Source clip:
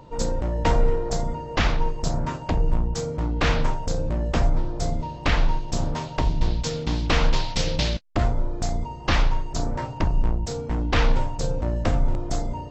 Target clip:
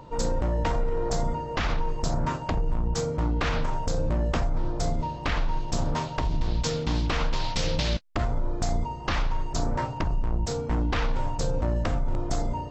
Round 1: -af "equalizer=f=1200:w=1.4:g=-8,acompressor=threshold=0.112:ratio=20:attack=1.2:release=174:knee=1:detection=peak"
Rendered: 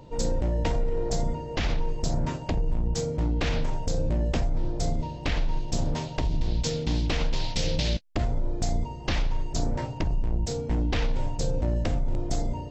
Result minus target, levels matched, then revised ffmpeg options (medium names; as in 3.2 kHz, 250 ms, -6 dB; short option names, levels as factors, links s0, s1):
1 kHz band -5.5 dB
-af "equalizer=f=1200:w=1.4:g=3,acompressor=threshold=0.112:ratio=20:attack=1.2:release=174:knee=1:detection=peak"